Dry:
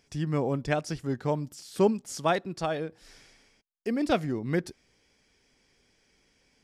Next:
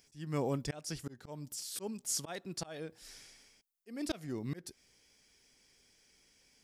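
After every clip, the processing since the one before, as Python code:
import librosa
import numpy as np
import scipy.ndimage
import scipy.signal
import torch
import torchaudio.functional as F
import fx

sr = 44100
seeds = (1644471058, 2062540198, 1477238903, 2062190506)

y = fx.high_shelf(x, sr, hz=3100.0, db=8.5)
y = fx.auto_swell(y, sr, attack_ms=297.0)
y = fx.high_shelf(y, sr, hz=8500.0, db=7.5)
y = y * librosa.db_to_amplitude(-5.5)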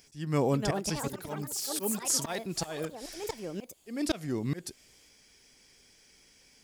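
y = fx.echo_pitch(x, sr, ms=396, semitones=6, count=3, db_per_echo=-6.0)
y = y * librosa.db_to_amplitude(7.0)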